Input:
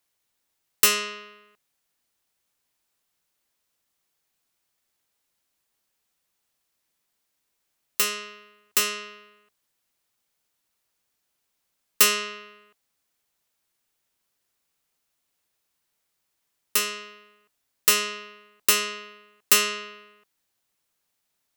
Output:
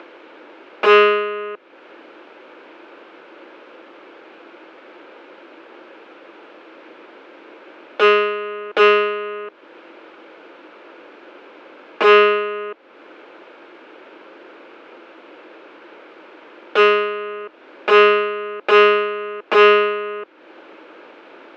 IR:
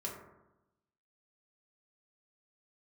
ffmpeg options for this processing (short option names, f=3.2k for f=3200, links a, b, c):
-af "acompressor=mode=upward:threshold=-37dB:ratio=2.5,aeval=exprs='0.708*sin(PI/2*7.94*val(0)/0.708)':c=same,highpass=f=300:w=0.5412,highpass=f=300:w=1.3066,equalizer=f=330:t=q:w=4:g=9,equalizer=f=520:t=q:w=4:g=5,equalizer=f=740:t=q:w=4:g=-6,equalizer=f=1.1k:t=q:w=4:g=-5,equalizer=f=1.9k:t=q:w=4:g=-10,lowpass=f=2.1k:w=0.5412,lowpass=f=2.1k:w=1.3066,volume=3dB"